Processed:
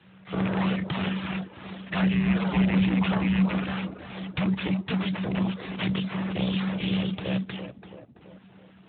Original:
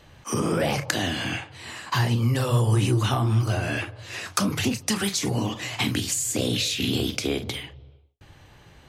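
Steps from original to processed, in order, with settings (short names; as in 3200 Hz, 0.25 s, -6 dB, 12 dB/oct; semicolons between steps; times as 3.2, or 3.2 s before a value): rattling part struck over -22 dBFS, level -17 dBFS; full-wave rectifier; tape echo 0.333 s, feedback 65%, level -5.5 dB, low-pass 1100 Hz; frequency shift -190 Hz; reverb removal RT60 0.57 s; Speex 18 kbps 8000 Hz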